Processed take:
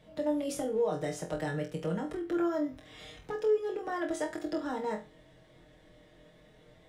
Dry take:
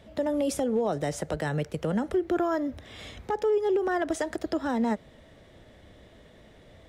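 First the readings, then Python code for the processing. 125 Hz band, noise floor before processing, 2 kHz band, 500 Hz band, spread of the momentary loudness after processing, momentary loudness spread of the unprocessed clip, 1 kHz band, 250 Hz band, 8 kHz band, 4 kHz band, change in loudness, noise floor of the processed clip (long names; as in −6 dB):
−6.0 dB, −54 dBFS, −5.5 dB, −4.5 dB, 8 LU, 8 LU, −6.0 dB, −5.5 dB, −5.0 dB, −5.0 dB, −5.0 dB, −60 dBFS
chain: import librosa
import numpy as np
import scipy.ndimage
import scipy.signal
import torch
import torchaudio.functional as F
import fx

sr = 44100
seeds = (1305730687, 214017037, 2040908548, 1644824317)

y = x + 0.71 * np.pad(x, (int(6.5 * sr / 1000.0), 0))[:len(x)]
y = fx.room_flutter(y, sr, wall_m=4.0, rt60_s=0.28)
y = F.gain(torch.from_numpy(y), -8.5).numpy()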